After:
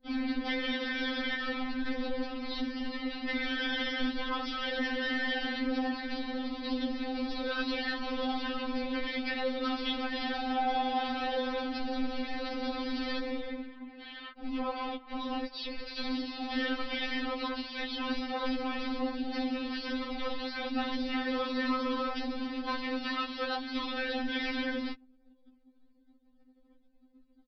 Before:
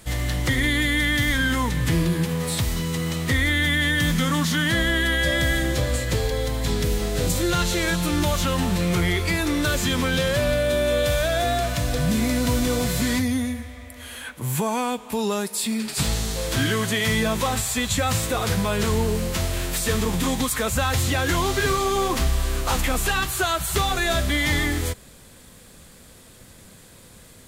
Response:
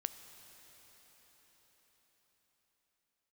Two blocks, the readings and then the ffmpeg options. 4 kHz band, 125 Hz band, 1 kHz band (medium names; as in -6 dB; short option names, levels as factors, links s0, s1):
-10.0 dB, under -35 dB, -7.5 dB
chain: -af "aeval=exprs='val(0)*sin(2*PI*170*n/s)':c=same,afftfilt=real='hypot(re,im)*cos(2*PI*random(0))':imag='hypot(re,im)*sin(2*PI*random(1))':win_size=512:overlap=0.75,anlmdn=0.00251,aresample=11025,asoftclip=type=tanh:threshold=0.0299,aresample=44100,afftfilt=real='re*3.46*eq(mod(b,12),0)':imag='im*3.46*eq(mod(b,12),0)':win_size=2048:overlap=0.75,volume=1.68"